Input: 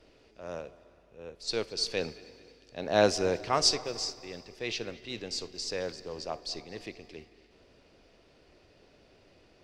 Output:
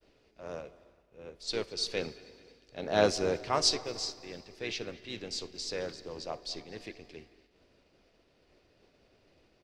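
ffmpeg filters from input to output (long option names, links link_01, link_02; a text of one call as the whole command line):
ffmpeg -i in.wav -filter_complex "[0:a]agate=range=-33dB:threshold=-56dB:ratio=3:detection=peak,asplit=2[link_01][link_02];[link_02]asetrate=37084,aresample=44100,atempo=1.18921,volume=-9dB[link_03];[link_01][link_03]amix=inputs=2:normalize=0,volume=-2.5dB" out.wav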